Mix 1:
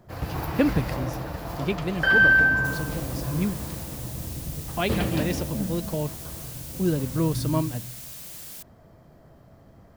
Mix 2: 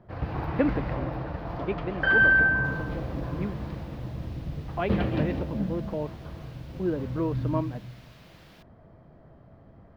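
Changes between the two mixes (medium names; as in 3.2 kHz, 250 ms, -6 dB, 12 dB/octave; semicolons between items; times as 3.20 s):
speech: add band-pass 270–2300 Hz; master: add distance through air 330 m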